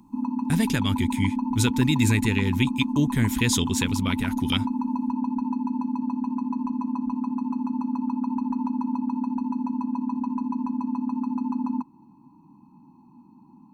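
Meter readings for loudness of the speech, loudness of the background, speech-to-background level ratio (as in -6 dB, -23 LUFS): -25.0 LUFS, -28.0 LUFS, 3.0 dB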